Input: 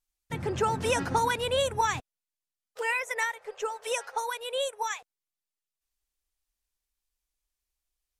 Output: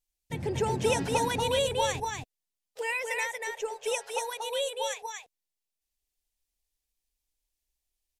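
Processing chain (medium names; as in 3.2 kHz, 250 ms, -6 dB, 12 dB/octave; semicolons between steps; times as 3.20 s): peaking EQ 1.3 kHz -12.5 dB 0.65 oct; delay 237 ms -3.5 dB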